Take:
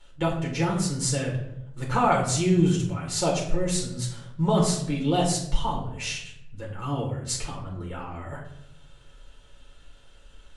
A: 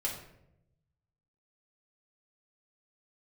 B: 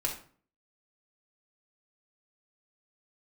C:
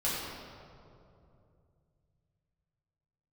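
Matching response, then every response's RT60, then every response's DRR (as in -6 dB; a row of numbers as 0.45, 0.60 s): A; 0.80, 0.45, 2.7 s; -3.0, -2.0, -9.0 dB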